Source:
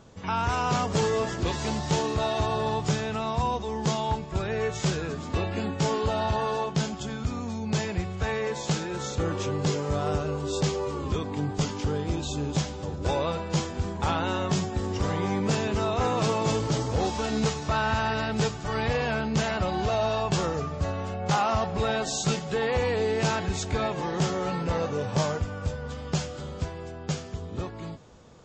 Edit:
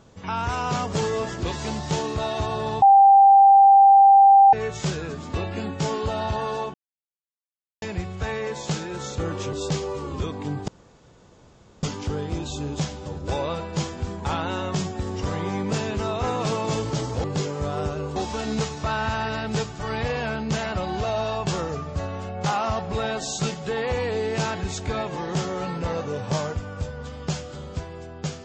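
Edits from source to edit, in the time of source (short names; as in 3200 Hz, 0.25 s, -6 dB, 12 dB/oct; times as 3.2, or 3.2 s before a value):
2.82–4.53 bleep 789 Hz -9 dBFS
6.74–7.82 mute
9.53–10.45 move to 17.01
11.6 insert room tone 1.15 s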